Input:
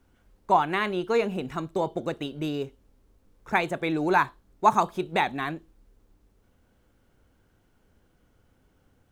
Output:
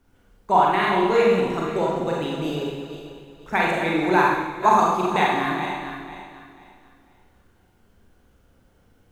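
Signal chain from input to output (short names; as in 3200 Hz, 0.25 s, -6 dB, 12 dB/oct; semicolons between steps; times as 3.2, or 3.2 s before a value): regenerating reverse delay 0.246 s, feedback 53%, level -9 dB; Schroeder reverb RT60 0.95 s, combs from 32 ms, DRR -3 dB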